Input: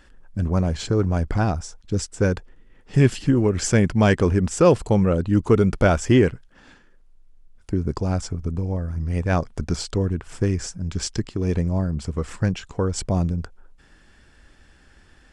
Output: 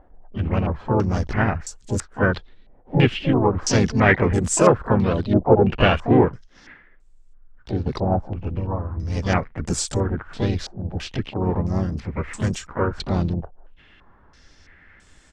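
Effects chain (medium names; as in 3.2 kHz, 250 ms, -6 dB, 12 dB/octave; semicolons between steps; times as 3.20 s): harmony voices -4 st -9 dB, +3 st -5 dB, +12 st -11 dB; step-sequenced low-pass 3 Hz 740–7800 Hz; trim -2.5 dB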